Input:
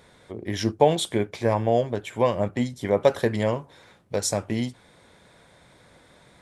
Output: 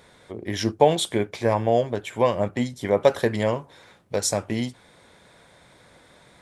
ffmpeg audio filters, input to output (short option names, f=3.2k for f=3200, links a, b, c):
-af "lowshelf=f=320:g=-3,volume=2dB"